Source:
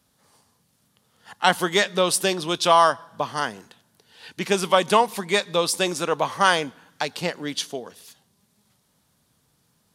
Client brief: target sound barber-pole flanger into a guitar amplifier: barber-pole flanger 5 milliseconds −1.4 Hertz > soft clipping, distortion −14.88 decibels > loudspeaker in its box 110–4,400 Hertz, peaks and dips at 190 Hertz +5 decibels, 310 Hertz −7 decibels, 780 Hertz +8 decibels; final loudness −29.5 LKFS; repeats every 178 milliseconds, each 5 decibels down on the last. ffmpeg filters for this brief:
ffmpeg -i in.wav -filter_complex "[0:a]aecho=1:1:178|356|534|712|890|1068|1246:0.562|0.315|0.176|0.0988|0.0553|0.031|0.0173,asplit=2[link_01][link_02];[link_02]adelay=5,afreqshift=-1.4[link_03];[link_01][link_03]amix=inputs=2:normalize=1,asoftclip=threshold=-14dB,highpass=110,equalizer=frequency=190:width_type=q:width=4:gain=5,equalizer=frequency=310:width_type=q:width=4:gain=-7,equalizer=frequency=780:width_type=q:width=4:gain=8,lowpass=frequency=4400:width=0.5412,lowpass=frequency=4400:width=1.3066,volume=-5dB" out.wav

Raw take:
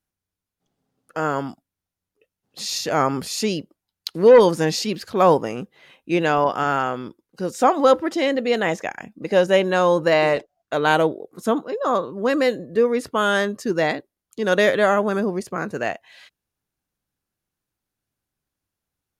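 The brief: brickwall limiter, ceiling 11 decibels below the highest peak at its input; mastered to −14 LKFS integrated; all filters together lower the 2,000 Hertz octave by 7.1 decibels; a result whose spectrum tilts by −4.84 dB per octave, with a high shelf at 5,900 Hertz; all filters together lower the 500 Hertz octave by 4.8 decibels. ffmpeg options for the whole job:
ffmpeg -i in.wav -af "equalizer=frequency=500:width_type=o:gain=-5,equalizer=frequency=2000:width_type=o:gain=-9,highshelf=frequency=5900:gain=-3.5,volume=15.5dB,alimiter=limit=-3dB:level=0:latency=1" out.wav

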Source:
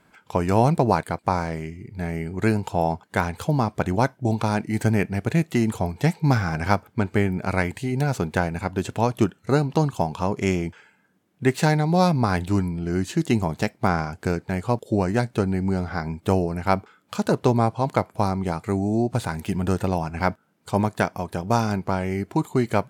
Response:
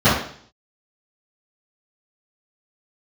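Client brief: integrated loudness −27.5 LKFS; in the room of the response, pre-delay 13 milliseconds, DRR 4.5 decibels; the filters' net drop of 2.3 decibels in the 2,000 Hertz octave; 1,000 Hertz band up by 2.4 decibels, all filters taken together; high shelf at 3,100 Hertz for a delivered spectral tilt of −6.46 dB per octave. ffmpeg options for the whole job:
-filter_complex "[0:a]equalizer=frequency=1000:width_type=o:gain=4,equalizer=frequency=2000:width_type=o:gain=-6.5,highshelf=frequency=3100:gain=4.5,asplit=2[link_01][link_02];[1:a]atrim=start_sample=2205,adelay=13[link_03];[link_02][link_03]afir=irnorm=-1:irlink=0,volume=-29dB[link_04];[link_01][link_04]amix=inputs=2:normalize=0,volume=-7.5dB"

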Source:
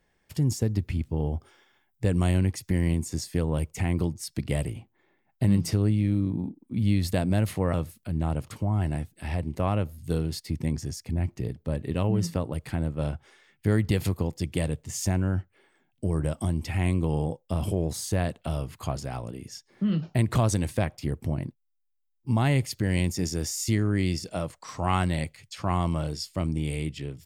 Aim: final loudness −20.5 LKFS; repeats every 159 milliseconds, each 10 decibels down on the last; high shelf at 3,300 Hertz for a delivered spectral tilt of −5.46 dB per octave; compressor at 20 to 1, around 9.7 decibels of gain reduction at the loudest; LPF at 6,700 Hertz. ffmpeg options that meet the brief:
ffmpeg -i in.wav -af "lowpass=6700,highshelf=frequency=3300:gain=4,acompressor=threshold=-27dB:ratio=20,aecho=1:1:159|318|477|636:0.316|0.101|0.0324|0.0104,volume=13.5dB" out.wav

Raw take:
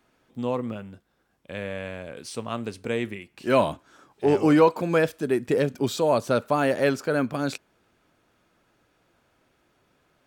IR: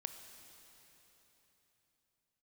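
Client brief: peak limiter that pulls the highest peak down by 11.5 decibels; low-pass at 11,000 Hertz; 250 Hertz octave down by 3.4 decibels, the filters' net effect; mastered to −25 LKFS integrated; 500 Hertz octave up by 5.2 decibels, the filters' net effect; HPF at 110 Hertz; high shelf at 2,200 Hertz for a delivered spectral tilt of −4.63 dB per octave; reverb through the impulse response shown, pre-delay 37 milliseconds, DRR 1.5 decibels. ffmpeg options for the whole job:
-filter_complex "[0:a]highpass=110,lowpass=11000,equalizer=frequency=250:width_type=o:gain=-7.5,equalizer=frequency=500:width_type=o:gain=7.5,highshelf=frequency=2200:gain=4.5,alimiter=limit=-14dB:level=0:latency=1,asplit=2[link_01][link_02];[1:a]atrim=start_sample=2205,adelay=37[link_03];[link_02][link_03]afir=irnorm=-1:irlink=0,volume=1dB[link_04];[link_01][link_04]amix=inputs=2:normalize=0,volume=-1.5dB"

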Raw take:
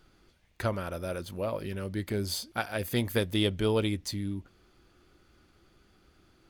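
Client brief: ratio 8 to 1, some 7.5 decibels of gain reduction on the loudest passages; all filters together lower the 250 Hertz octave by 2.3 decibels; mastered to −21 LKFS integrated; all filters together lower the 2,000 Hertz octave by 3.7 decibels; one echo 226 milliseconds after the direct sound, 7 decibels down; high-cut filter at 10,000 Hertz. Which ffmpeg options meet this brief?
ffmpeg -i in.wav -af "lowpass=10000,equalizer=frequency=250:width_type=o:gain=-3,equalizer=frequency=2000:width_type=o:gain=-5,acompressor=threshold=-31dB:ratio=8,aecho=1:1:226:0.447,volume=16dB" out.wav

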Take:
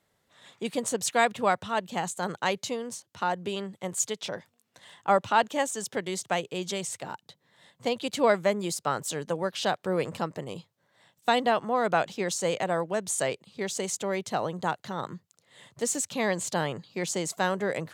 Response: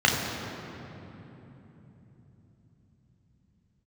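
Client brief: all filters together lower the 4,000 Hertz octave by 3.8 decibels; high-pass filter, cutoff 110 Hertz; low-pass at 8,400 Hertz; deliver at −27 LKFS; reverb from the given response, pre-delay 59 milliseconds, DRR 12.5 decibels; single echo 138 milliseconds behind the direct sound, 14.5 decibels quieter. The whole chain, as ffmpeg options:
-filter_complex "[0:a]highpass=110,lowpass=8400,equalizer=frequency=4000:width_type=o:gain=-5,aecho=1:1:138:0.188,asplit=2[link_01][link_02];[1:a]atrim=start_sample=2205,adelay=59[link_03];[link_02][link_03]afir=irnorm=-1:irlink=0,volume=-30.5dB[link_04];[link_01][link_04]amix=inputs=2:normalize=0,volume=2.5dB"

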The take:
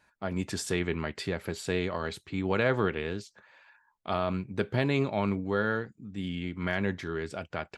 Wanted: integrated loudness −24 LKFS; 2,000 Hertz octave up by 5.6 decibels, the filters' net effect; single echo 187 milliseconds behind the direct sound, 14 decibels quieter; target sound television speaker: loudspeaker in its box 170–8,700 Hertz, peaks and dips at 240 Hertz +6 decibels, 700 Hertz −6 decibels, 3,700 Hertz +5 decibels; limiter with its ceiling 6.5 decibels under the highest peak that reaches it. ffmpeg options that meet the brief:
ffmpeg -i in.wav -af "equalizer=frequency=2000:width_type=o:gain=7,alimiter=limit=-16dB:level=0:latency=1,highpass=frequency=170:width=0.5412,highpass=frequency=170:width=1.3066,equalizer=frequency=240:width_type=q:width=4:gain=6,equalizer=frequency=700:width_type=q:width=4:gain=-6,equalizer=frequency=3700:width_type=q:width=4:gain=5,lowpass=frequency=8700:width=0.5412,lowpass=frequency=8700:width=1.3066,aecho=1:1:187:0.2,volume=7dB" out.wav

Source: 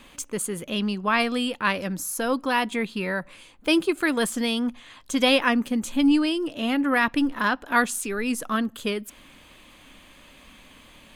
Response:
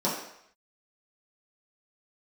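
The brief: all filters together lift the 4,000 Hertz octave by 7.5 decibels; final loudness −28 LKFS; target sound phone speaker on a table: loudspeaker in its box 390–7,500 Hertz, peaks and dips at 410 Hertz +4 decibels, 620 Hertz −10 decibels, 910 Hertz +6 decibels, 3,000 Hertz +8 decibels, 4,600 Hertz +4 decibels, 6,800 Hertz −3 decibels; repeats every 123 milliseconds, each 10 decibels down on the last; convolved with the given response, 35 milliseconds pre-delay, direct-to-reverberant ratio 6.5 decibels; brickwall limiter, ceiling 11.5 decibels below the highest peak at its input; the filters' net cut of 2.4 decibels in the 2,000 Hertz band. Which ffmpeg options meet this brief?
-filter_complex "[0:a]equalizer=frequency=2000:width_type=o:gain=-7,equalizer=frequency=4000:width_type=o:gain=5.5,alimiter=limit=-19.5dB:level=0:latency=1,aecho=1:1:123|246|369|492:0.316|0.101|0.0324|0.0104,asplit=2[link_01][link_02];[1:a]atrim=start_sample=2205,adelay=35[link_03];[link_02][link_03]afir=irnorm=-1:irlink=0,volume=-18dB[link_04];[link_01][link_04]amix=inputs=2:normalize=0,highpass=frequency=390:width=0.5412,highpass=frequency=390:width=1.3066,equalizer=frequency=410:width_type=q:width=4:gain=4,equalizer=frequency=620:width_type=q:width=4:gain=-10,equalizer=frequency=910:width_type=q:width=4:gain=6,equalizer=frequency=3000:width_type=q:width=4:gain=8,equalizer=frequency=4600:width_type=q:width=4:gain=4,equalizer=frequency=6800:width_type=q:width=4:gain=-3,lowpass=frequency=7500:width=0.5412,lowpass=frequency=7500:width=1.3066,volume=1dB"

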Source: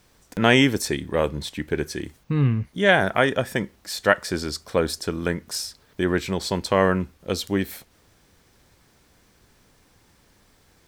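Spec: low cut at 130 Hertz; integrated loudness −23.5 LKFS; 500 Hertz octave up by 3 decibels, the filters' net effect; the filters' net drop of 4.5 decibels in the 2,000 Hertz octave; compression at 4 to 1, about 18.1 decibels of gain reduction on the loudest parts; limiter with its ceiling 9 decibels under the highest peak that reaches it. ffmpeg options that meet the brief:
ffmpeg -i in.wav -af "highpass=130,equalizer=frequency=500:width_type=o:gain=4,equalizer=frequency=2000:width_type=o:gain=-6,acompressor=threshold=-34dB:ratio=4,volume=15.5dB,alimiter=limit=-11dB:level=0:latency=1" out.wav

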